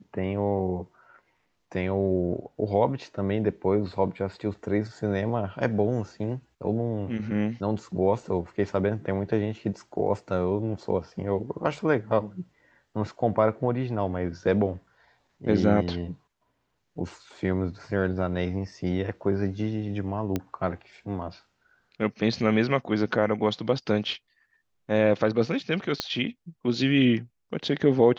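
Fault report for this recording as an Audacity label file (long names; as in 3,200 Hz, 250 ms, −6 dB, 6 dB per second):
20.360000	20.360000	click −14 dBFS
26.000000	26.000000	click −11 dBFS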